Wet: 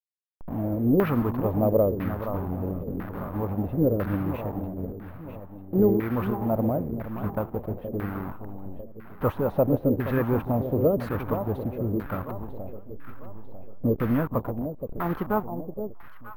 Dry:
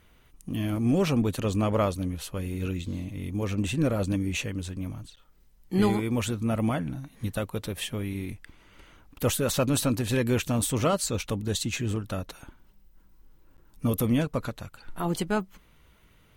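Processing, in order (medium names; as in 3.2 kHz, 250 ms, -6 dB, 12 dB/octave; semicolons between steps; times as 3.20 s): send-on-delta sampling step -31 dBFS; echo whose repeats swap between lows and highs 473 ms, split 1 kHz, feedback 63%, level -8.5 dB; LFO low-pass saw down 1 Hz 400–1700 Hz; careless resampling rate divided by 3×, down filtered, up hold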